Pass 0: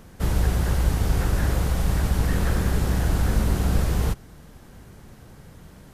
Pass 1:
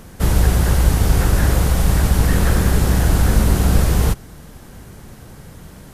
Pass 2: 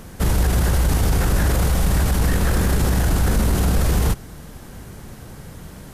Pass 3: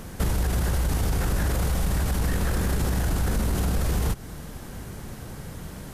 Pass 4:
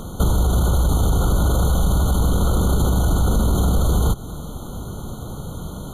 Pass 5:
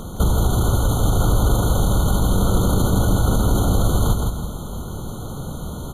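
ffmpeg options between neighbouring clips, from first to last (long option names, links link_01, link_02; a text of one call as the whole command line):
ffmpeg -i in.wav -af "equalizer=frequency=11000:width_type=o:width=1.4:gain=4,volume=7dB" out.wav
ffmpeg -i in.wav -af "alimiter=limit=-11.5dB:level=0:latency=1:release=14,volume=1dB" out.wav
ffmpeg -i in.wav -af "acompressor=threshold=-21dB:ratio=6" out.wav
ffmpeg -i in.wav -af "afftfilt=real='re*eq(mod(floor(b*sr/1024/1500),2),0)':imag='im*eq(mod(floor(b*sr/1024/1500),2),0)':win_size=1024:overlap=0.75,volume=7dB" out.wav
ffmpeg -i in.wav -af "aecho=1:1:165|330|495|660|825:0.631|0.246|0.096|0.0374|0.0146" out.wav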